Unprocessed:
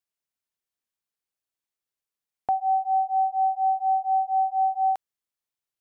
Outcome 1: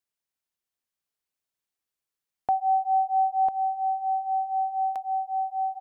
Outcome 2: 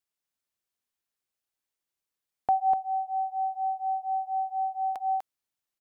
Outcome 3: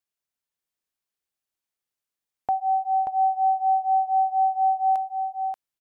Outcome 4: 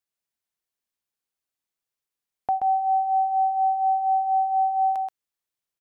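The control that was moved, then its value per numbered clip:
delay, time: 998 ms, 247 ms, 583 ms, 129 ms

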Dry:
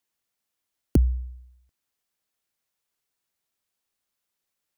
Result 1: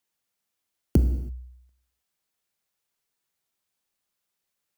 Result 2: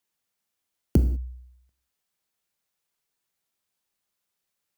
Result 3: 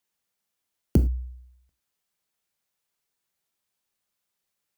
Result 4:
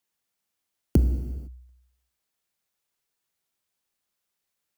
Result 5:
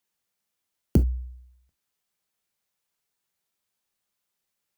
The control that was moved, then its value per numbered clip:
gated-style reverb, gate: 350 ms, 220 ms, 130 ms, 530 ms, 90 ms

